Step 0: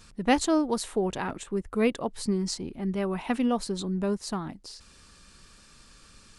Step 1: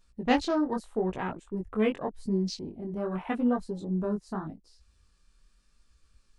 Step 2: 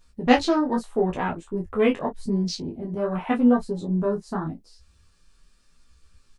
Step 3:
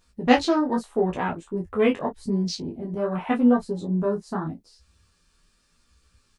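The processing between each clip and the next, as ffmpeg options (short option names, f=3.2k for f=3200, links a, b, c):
-af "afwtdn=0.0141,flanger=delay=16:depth=7.6:speed=0.84,volume=1dB"
-af "aecho=1:1:12|30:0.631|0.224,volume=5dB"
-af "highpass=f=55:p=1"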